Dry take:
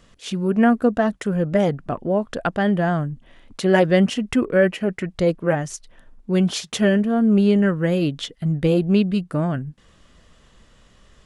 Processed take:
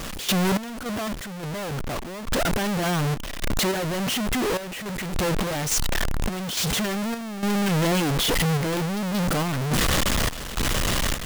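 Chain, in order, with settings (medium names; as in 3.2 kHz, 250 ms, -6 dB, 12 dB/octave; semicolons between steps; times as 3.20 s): one-bit comparator; random-step tremolo, depth 80%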